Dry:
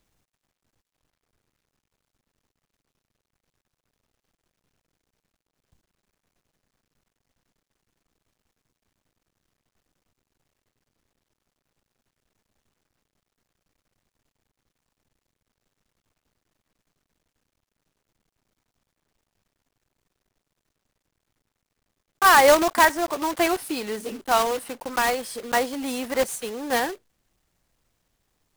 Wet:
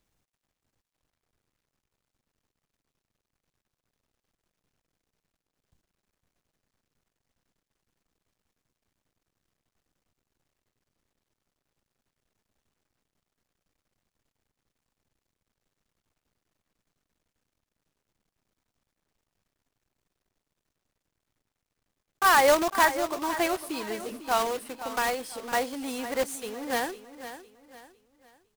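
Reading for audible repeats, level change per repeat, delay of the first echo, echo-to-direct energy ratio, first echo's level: 3, −9.0 dB, 505 ms, −12.0 dB, −12.5 dB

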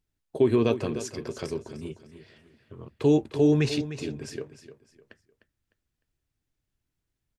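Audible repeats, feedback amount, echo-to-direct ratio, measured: 3, 32%, −12.0 dB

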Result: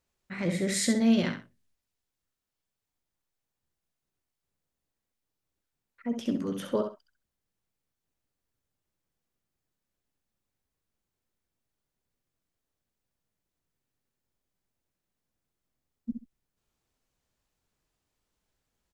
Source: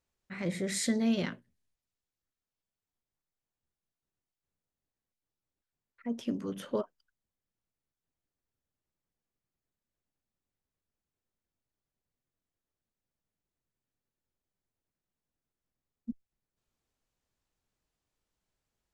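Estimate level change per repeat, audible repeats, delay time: −14.0 dB, 2, 66 ms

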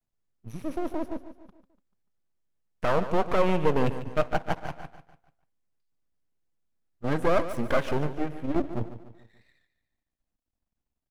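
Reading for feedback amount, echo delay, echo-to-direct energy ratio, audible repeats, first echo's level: 45%, 146 ms, −11.5 dB, 4, −12.5 dB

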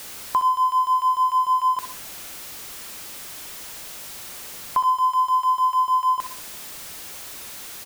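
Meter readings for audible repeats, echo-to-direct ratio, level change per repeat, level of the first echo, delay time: 3, −10.0 dB, −7.5 dB, −11.0 dB, 64 ms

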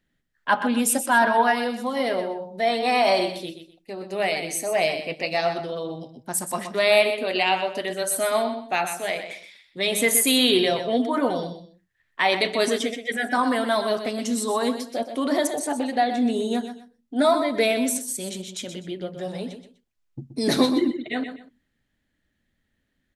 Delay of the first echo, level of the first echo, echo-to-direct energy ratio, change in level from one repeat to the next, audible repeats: 125 ms, −9.5 dB, −9.0 dB, −12.0 dB, 2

